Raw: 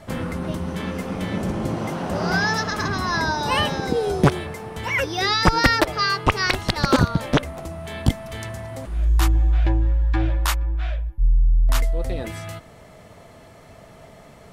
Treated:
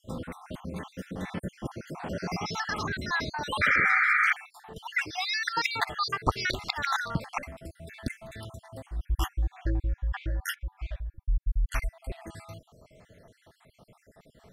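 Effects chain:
time-frequency cells dropped at random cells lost 57%
dynamic equaliser 2,200 Hz, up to +7 dB, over −40 dBFS, Q 0.88
sound drawn into the spectrogram noise, 0:03.61–0:04.33, 1,200–2,400 Hz −15 dBFS
level −8 dB

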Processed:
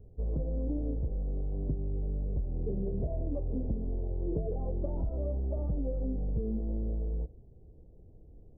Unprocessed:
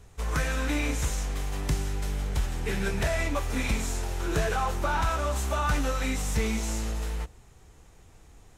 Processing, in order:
stylus tracing distortion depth 0.22 ms
Butterworth low-pass 580 Hz 36 dB per octave
downward compressor 6 to 1, threshold −28 dBFS, peak gain reduction 7 dB
Ogg Vorbis 32 kbit/s 22,050 Hz

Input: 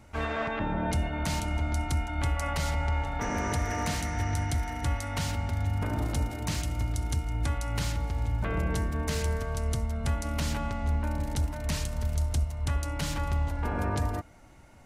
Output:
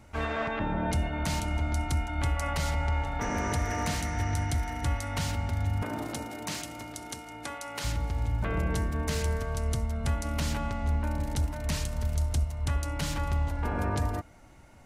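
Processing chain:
0:05.82–0:07.83: high-pass filter 180 Hz → 390 Hz 12 dB per octave

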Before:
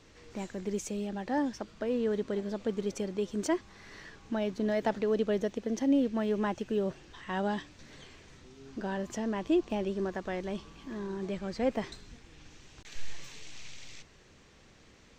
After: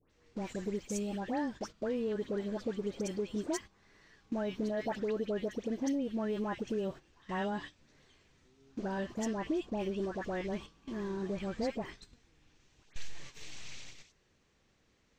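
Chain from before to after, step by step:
downward compressor 5 to 1, threshold −31 dBFS, peak gain reduction 8.5 dB
all-pass dispersion highs, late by 105 ms, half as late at 1,700 Hz
noise gate −44 dBFS, range −13 dB

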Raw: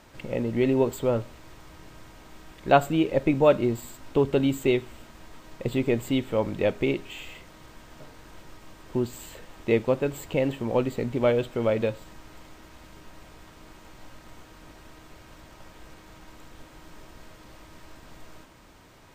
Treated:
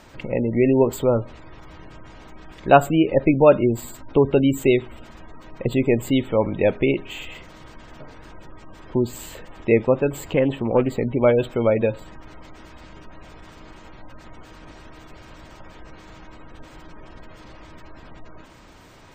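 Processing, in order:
gate on every frequency bin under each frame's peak −30 dB strong
0:10.16–0:10.97: highs frequency-modulated by the lows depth 0.16 ms
level +5.5 dB

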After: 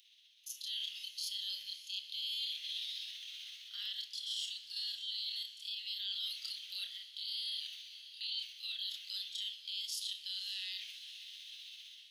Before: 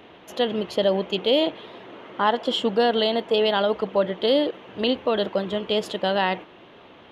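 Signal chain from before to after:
inverse Chebyshev high-pass filter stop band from 1,000 Hz, stop band 70 dB
notch filter 7,200 Hz, Q 7.9
reversed playback
downward compressor 6 to 1, threshold −52 dBFS, peak gain reduction 19 dB
reversed playback
time stretch by overlap-add 1.7×, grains 129 ms
automatic gain control gain up to 14.5 dB
brickwall limiter −34 dBFS, peak gain reduction 10 dB
feedback delay with all-pass diffusion 554 ms, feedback 53%, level −14.5 dB
on a send at −9 dB: convolution reverb, pre-delay 3 ms
on the sum: level +4 dB

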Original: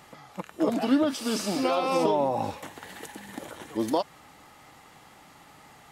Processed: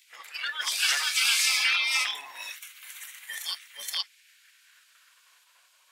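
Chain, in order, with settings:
sub-octave generator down 1 octave, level +1 dB
backwards echo 474 ms −3.5 dB
noise reduction from a noise print of the clip's start 14 dB
in parallel at −1 dB: brickwall limiter −18 dBFS, peak gain reduction 8.5 dB
on the sum: hard clipping −12 dBFS, distortion −21 dB
gate on every frequency bin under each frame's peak −15 dB weak
high-pass filter sweep 2,000 Hz → 900 Hz, 0:04.19–0:05.65
level +5 dB

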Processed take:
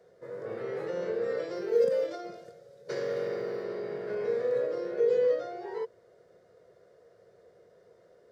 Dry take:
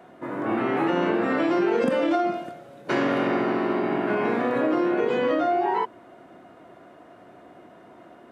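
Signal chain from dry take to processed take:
drawn EQ curve 110 Hz 0 dB, 180 Hz −5 dB, 290 Hz −21 dB, 470 Hz +12 dB, 730 Hz −12 dB, 1,000 Hz −12 dB, 1,900 Hz −4 dB, 2,700 Hz −12 dB, 4,900 Hz +8 dB, 9,700 Hz −2 dB
0:01.55–0:03.64: floating-point word with a short mantissa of 6 bits
level −9 dB

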